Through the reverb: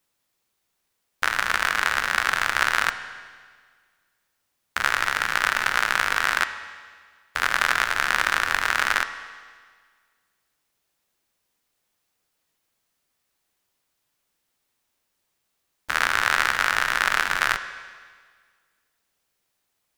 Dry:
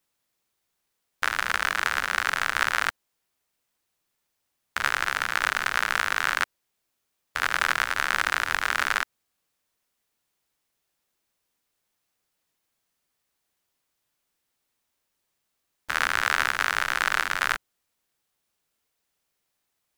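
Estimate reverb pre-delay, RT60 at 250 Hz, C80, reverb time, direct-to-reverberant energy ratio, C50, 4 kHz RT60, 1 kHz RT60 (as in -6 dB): 10 ms, 1.7 s, 12.0 dB, 1.7 s, 9.5 dB, 11.0 dB, 1.6 s, 1.7 s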